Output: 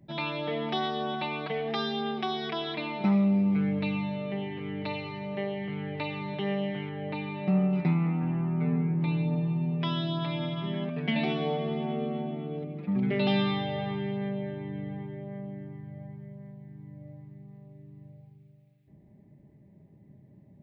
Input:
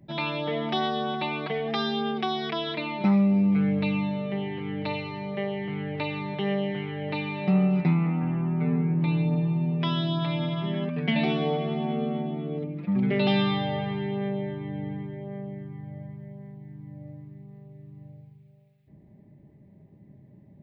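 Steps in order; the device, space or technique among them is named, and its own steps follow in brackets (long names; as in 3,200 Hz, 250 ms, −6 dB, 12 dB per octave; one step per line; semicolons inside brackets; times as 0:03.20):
compressed reverb return (on a send at −12 dB: convolution reverb RT60 2.8 s, pre-delay 94 ms + downward compressor, threshold −26 dBFS, peak gain reduction 8 dB)
0:06.89–0:07.73: on the sum: high-shelf EQ 3,200 Hz −9.5 dB
level −3 dB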